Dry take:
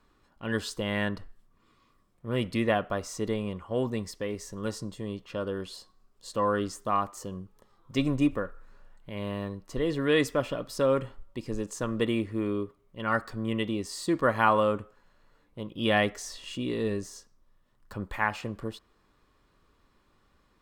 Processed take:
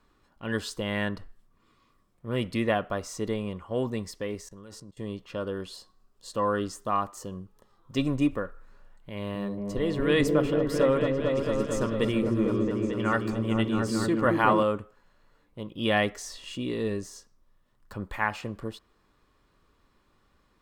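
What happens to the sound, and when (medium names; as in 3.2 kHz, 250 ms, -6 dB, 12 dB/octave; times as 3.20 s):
4.41–4.97 s: level held to a coarse grid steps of 23 dB
5.66–8.08 s: band-stop 2.2 kHz
9.13–14.63 s: delay with an opening low-pass 223 ms, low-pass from 400 Hz, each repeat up 1 oct, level 0 dB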